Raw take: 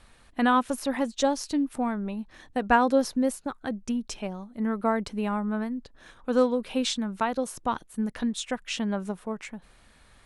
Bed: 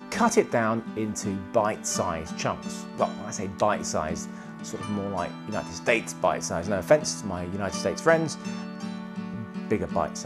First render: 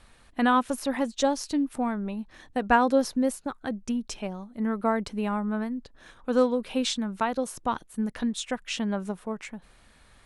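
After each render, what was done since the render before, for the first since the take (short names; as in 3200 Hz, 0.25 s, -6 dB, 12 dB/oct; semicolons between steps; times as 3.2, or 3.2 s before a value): nothing audible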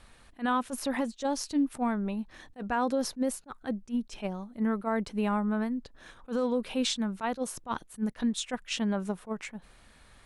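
limiter -19.5 dBFS, peak gain reduction 11 dB; attack slew limiter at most 350 dB/s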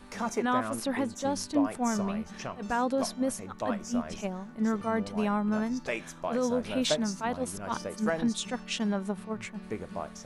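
add bed -10.5 dB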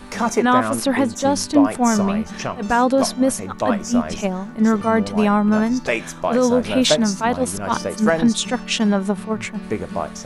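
gain +12 dB; limiter -3 dBFS, peak gain reduction 1 dB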